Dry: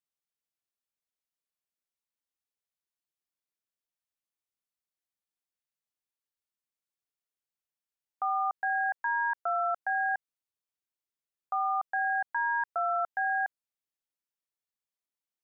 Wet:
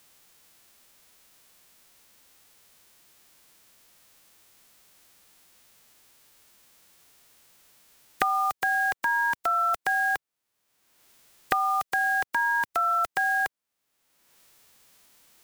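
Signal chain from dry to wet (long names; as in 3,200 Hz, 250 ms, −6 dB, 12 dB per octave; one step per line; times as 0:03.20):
spectral envelope flattened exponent 0.3
multiband upward and downward compressor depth 100%
level +4 dB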